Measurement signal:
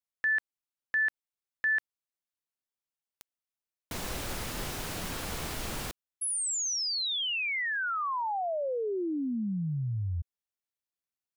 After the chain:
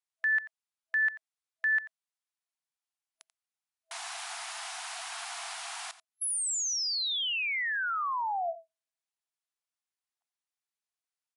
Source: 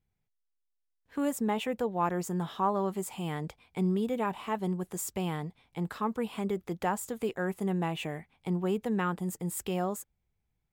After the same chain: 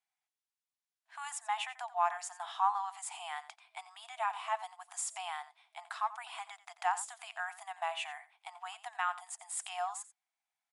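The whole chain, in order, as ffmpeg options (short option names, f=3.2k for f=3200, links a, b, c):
-af "afftfilt=real='re*between(b*sr/4096,650,11000)':imag='im*between(b*sr/4096,650,11000)':win_size=4096:overlap=0.75,aecho=1:1:88:0.158"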